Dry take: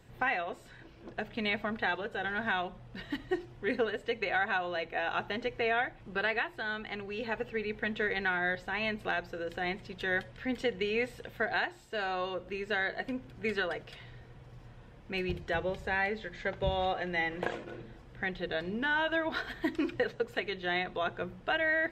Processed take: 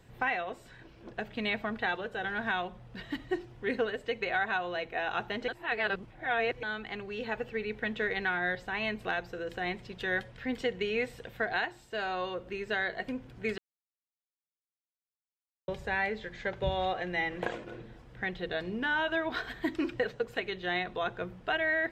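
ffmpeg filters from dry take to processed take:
-filter_complex "[0:a]asplit=5[a][b][c][d][e];[a]atrim=end=5.482[f];[b]atrim=start=5.478:end=6.632,asetpts=PTS-STARTPTS,areverse[g];[c]atrim=start=6.628:end=13.58,asetpts=PTS-STARTPTS,afade=t=out:st=6.948:d=0.004:c=hsin[h];[d]atrim=start=13.58:end=15.68,asetpts=PTS-STARTPTS,volume=0[i];[e]atrim=start=15.68,asetpts=PTS-STARTPTS,afade=t=in:d=0.004:c=hsin[j];[f][g]acrossfade=d=0.004:c1=hsin:c2=hsin[k];[h][i][j]concat=n=3:v=0:a=1[l];[k][l]acrossfade=d=0.004:c1=hsin:c2=hsin"

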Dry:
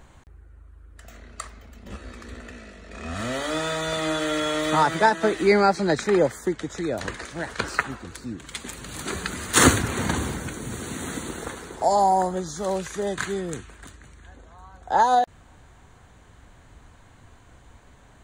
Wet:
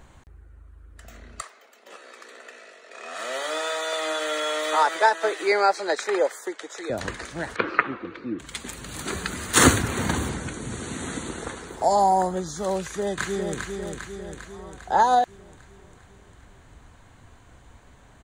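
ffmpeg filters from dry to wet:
-filter_complex "[0:a]asettb=1/sr,asplit=3[a][b][c];[a]atrim=end=1.414[d];[b]atrim=start=1.41:end=6.9,asetpts=PTS-STARTPTS,afade=t=in:d=0.004:c=qsin,afade=t=out:st=5.486:d=0.004:c=qsin,highpass=f=430:w=0.5412,highpass=f=430:w=1.3066[e];[c]atrim=start=6.896[f];[d][e]acrossfade=d=0.004:c1=hsin:c2=qsin[g];[g][f]acrossfade=d=0.004:c1=qsin:c2=hsin,asettb=1/sr,asplit=3[h][i][j];[h]atrim=end=7.564[k];[i]atrim=start=7.56:end=8.39,asetpts=PTS-STARTPTS,afade=t=in:d=0.004:c=qsin,afade=t=out:st=0.826:d=0.004:c=qsin,highpass=160,equalizer=f=330:t=q:w=4:g=10,equalizer=f=500:t=q:w=4:g=6,equalizer=f=800:t=q:w=4:g=-3,equalizer=f=1.2k:t=q:w=4:g=6,equalizer=f=2.3k:t=q:w=4:g=5,lowpass=f=3.3k:w=0.5412,lowpass=f=3.3k:w=1.3066[l];[j]atrim=start=8.386[m];[k][l]acrossfade=d=0.004:c1=hsin:c2=qsin[n];[n][m]acrossfade=d=0.004:c1=qsin:c2=hsin,asettb=1/sr,asplit=3[o][p][q];[o]atrim=end=10.294[r];[p]atrim=start=10.29:end=11.68,asetpts=PTS-STARTPTS,afade=t=in:d=0.004:c=qsin,afade=t=out:st=1.386:d=0.004:c=qsin,lowpass=f=9.9k:w=0.5412,lowpass=f=9.9k:w=1.3066[s];[q]atrim=start=11.676[t];[r][s]acrossfade=d=0.004:c1=hsin:c2=qsin[u];[u][t]acrossfade=d=0.004:c1=qsin:c2=hsin,asplit=2[v][w];[w]afade=t=in:st=12.8:d=0.01,afade=t=out:st=13.58:d=0.01,aecho=0:1:400|800|1200|1600|2000|2400|2800|3200:0.562341|0.337405|0.202443|0.121466|0.0728794|0.0437277|0.0262366|0.015742[x];[v][x]amix=inputs=2:normalize=0"

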